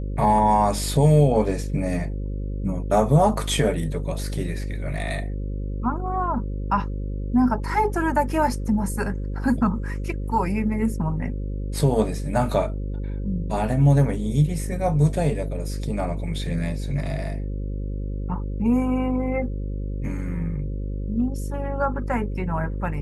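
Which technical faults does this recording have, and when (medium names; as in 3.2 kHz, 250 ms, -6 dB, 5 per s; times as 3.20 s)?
buzz 50 Hz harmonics 11 -28 dBFS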